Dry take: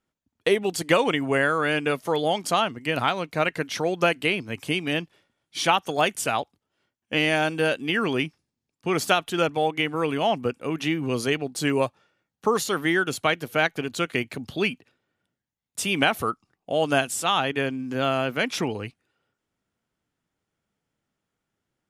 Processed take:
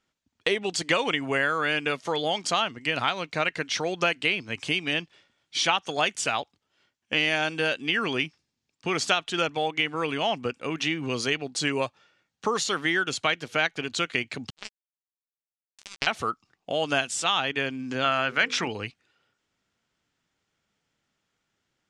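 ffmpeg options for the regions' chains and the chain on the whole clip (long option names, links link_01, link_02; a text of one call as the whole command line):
ffmpeg -i in.wav -filter_complex "[0:a]asettb=1/sr,asplit=3[link_01][link_02][link_03];[link_01]atrim=end=14.504[link_04];[link_02]atrim=start=14.5:end=16.07,asetpts=PTS-STARTPTS,afade=type=in:duration=0.004:curve=qsin,afade=type=out:start_time=1.566:duration=0.004:curve=qsin,acompressor=threshold=-25dB:ratio=2.5:attack=3.2:release=140:knee=1:detection=peak,acrusher=bits=2:mix=0:aa=0.5,asplit=2[link_05][link_06];[link_06]adelay=14,volume=-9.5dB[link_07];[link_05][link_07]amix=inputs=2:normalize=0,atrim=end_sample=69237[link_08];[link_03]atrim=start=16.066[link_09];[link_04][link_08]acrossfade=duration=0.004:curve1=hsin:curve2=qsin[link_10];[link_10][link_09]acrossfade=duration=0.004:curve1=qsin:curve2=hsin,asettb=1/sr,asplit=3[link_11][link_12][link_13];[link_11]atrim=end=18.044[link_14];[link_12]atrim=start=18.04:end=18.68,asetpts=PTS-STARTPTS,afade=type=in:duration=0.004:curve=qsin,afade=type=out:start_time=0.636:duration=0.004:curve=qsin,equalizer=frequency=1500:width_type=o:width=1.2:gain=7.5,bandreject=frequency=50:width_type=h:width=6,bandreject=frequency=100:width_type=h:width=6,bandreject=frequency=150:width_type=h:width=6,bandreject=frequency=200:width_type=h:width=6,bandreject=frequency=250:width_type=h:width=6,bandreject=frequency=300:width_type=h:width=6,bandreject=frequency=350:width_type=h:width=6,bandreject=frequency=400:width_type=h:width=6,bandreject=frequency=450:width_type=h:width=6,bandreject=frequency=500:width_type=h:width=6[link_15];[link_13]atrim=start=18.676[link_16];[link_14][link_15]acrossfade=duration=0.004:curve1=hsin:curve2=qsin[link_17];[link_17][link_16]acrossfade=duration=0.004:curve1=qsin:curve2=hsin,lowpass=frequency=8000:width=0.5412,lowpass=frequency=8000:width=1.3066,equalizer=frequency=4100:width=0.31:gain=8.5,acompressor=threshold=-33dB:ratio=1.5" out.wav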